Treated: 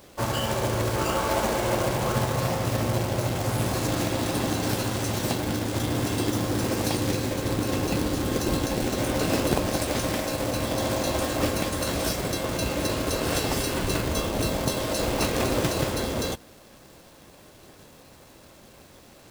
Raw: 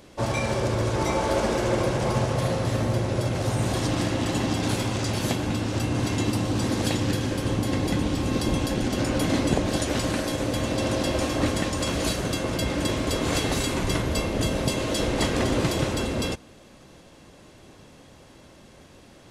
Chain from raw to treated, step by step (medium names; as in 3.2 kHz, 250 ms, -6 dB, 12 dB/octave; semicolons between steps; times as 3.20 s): formant shift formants +4 st; companded quantiser 4-bit; trim -1.5 dB